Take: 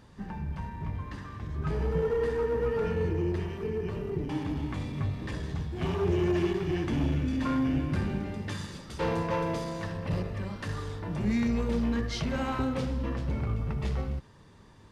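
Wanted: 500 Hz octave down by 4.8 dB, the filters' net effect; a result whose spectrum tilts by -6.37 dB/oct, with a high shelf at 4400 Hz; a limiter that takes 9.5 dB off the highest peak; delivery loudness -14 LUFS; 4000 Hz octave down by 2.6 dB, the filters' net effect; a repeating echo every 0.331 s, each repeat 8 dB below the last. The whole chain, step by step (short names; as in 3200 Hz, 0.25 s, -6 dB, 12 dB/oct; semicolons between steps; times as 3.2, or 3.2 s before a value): bell 500 Hz -6 dB; bell 4000 Hz -7 dB; high shelf 4400 Hz +6.5 dB; limiter -27 dBFS; feedback echo 0.331 s, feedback 40%, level -8 dB; gain +21 dB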